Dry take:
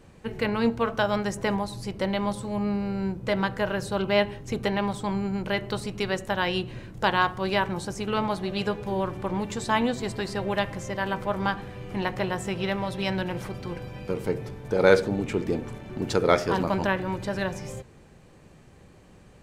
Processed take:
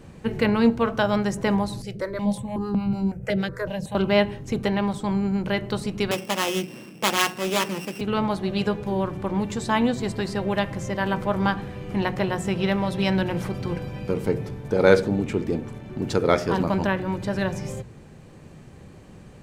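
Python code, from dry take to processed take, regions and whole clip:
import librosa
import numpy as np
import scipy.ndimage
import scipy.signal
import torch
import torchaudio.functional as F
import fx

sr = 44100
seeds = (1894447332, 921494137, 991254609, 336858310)

y = fx.chain(x, sr, fx.harmonic_tremolo(hz=6.5, depth_pct=70, crossover_hz=510.0),
    fx.phaser_held(hz=5.4, low_hz=270.0, high_hz=1800.0), at=(1.82, 3.95))
y = fx.chain(y, sr, fx.sample_sort(block=16),
    fx.highpass(hz=190.0, slope=24),
    fx.doppler_dist(depth_ms=0.26), at=(6.11, 8.01))
y = fx.peak_eq(y, sr, hz=150.0, db=5.5, octaves=2.2)
y = fx.hum_notches(y, sr, base_hz=60, count=3)
y = fx.rider(y, sr, range_db=10, speed_s=2.0)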